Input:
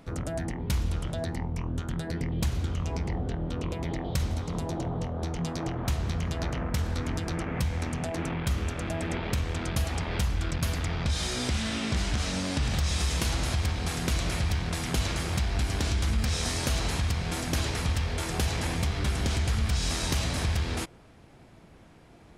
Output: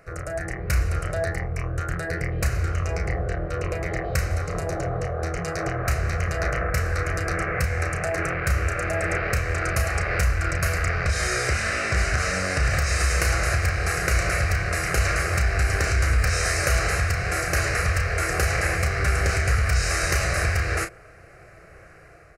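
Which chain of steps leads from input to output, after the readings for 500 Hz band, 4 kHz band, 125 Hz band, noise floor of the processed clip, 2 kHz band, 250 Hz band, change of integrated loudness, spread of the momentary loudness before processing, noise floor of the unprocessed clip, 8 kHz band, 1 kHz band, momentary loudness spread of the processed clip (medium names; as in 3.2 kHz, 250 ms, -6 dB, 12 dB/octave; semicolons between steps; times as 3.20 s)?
+8.0 dB, +0.5 dB, +4.5 dB, -48 dBFS, +12.5 dB, -2.5 dB, +6.0 dB, 5 LU, -53 dBFS, +6.0 dB, +8.0 dB, 6 LU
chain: peaking EQ 1.7 kHz +8.5 dB 3 oct; level rider gain up to 5.5 dB; static phaser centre 920 Hz, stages 6; doubling 33 ms -8 dB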